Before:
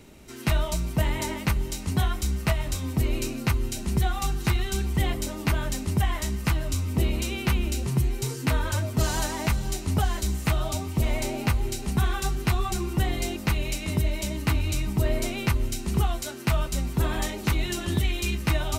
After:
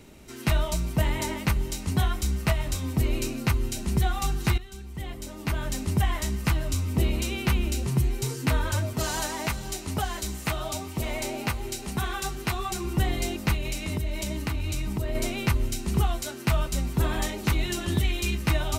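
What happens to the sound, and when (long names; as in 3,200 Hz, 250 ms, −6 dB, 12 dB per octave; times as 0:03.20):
0:04.58–0:05.81: fade in quadratic, from −15 dB
0:08.93–0:12.85: low-shelf EQ 200 Hz −9 dB
0:13.55–0:15.15: downward compressor 4 to 1, threshold −25 dBFS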